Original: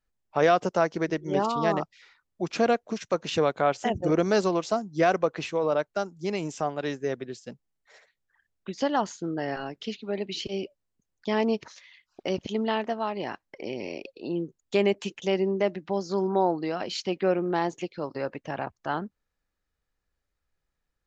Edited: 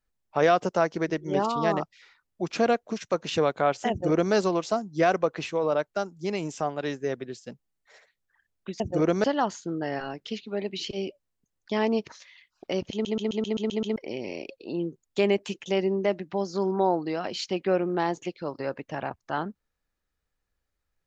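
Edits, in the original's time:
0:03.90–0:04.34: duplicate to 0:08.80
0:12.48: stutter in place 0.13 s, 8 plays

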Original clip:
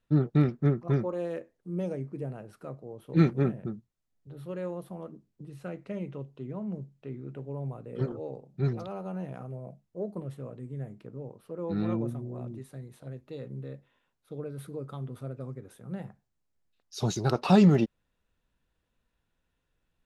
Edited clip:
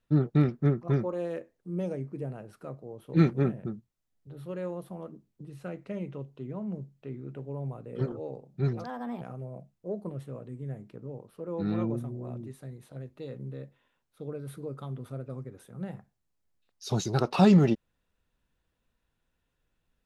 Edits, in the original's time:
0:08.84–0:09.32: play speed 129%

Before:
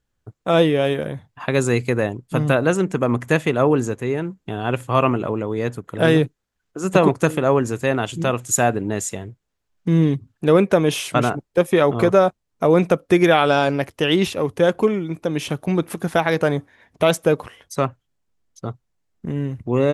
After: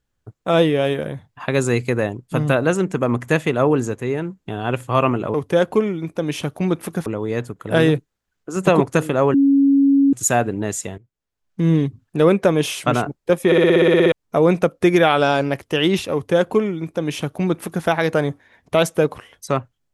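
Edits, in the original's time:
0:07.62–0:08.41: beep over 277 Hz −10.5 dBFS
0:09.26–0:09.98: fade in, from −18.5 dB
0:11.74: stutter in place 0.06 s, 11 plays
0:14.41–0:16.13: duplicate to 0:05.34

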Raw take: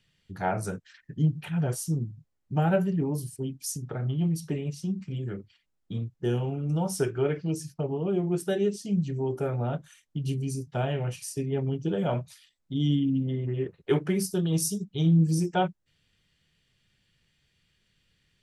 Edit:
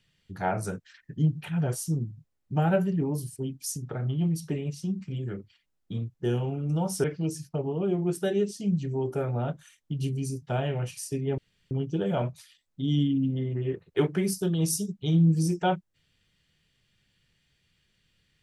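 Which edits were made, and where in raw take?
0:07.04–0:07.29: remove
0:11.63: splice in room tone 0.33 s

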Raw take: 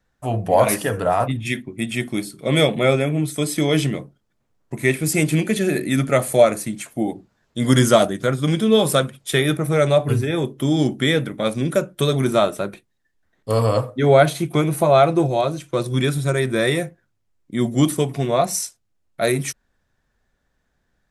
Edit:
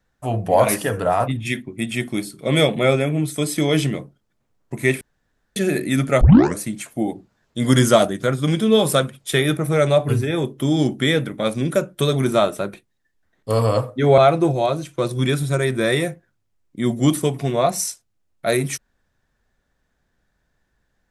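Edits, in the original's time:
0:05.01–0:05.56: fill with room tone
0:06.21: tape start 0.37 s
0:14.18–0:14.93: remove

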